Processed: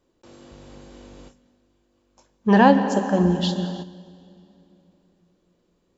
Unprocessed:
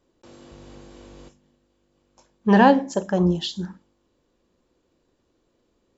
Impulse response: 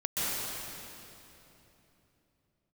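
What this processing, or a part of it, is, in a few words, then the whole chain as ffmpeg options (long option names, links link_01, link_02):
keyed gated reverb: -filter_complex "[0:a]asplit=3[link_01][link_02][link_03];[1:a]atrim=start_sample=2205[link_04];[link_02][link_04]afir=irnorm=-1:irlink=0[link_05];[link_03]apad=whole_len=263508[link_06];[link_05][link_06]sidechaingate=range=-10dB:threshold=-47dB:ratio=16:detection=peak,volume=-17dB[link_07];[link_01][link_07]amix=inputs=2:normalize=0,volume=-1dB"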